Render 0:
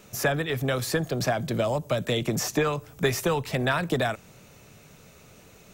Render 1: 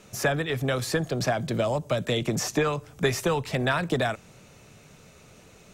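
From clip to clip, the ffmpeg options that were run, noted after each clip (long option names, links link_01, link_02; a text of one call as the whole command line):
ffmpeg -i in.wav -af "lowpass=11000" out.wav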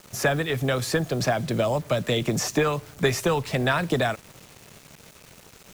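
ffmpeg -i in.wav -af "acrusher=bits=7:mix=0:aa=0.000001,volume=2dB" out.wav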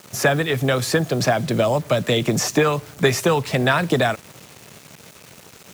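ffmpeg -i in.wav -af "highpass=85,volume=5dB" out.wav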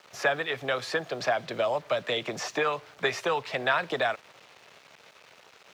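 ffmpeg -i in.wav -filter_complex "[0:a]acrossover=split=450 4900:gain=0.141 1 0.112[link_01][link_02][link_03];[link_01][link_02][link_03]amix=inputs=3:normalize=0,volume=-5.5dB" out.wav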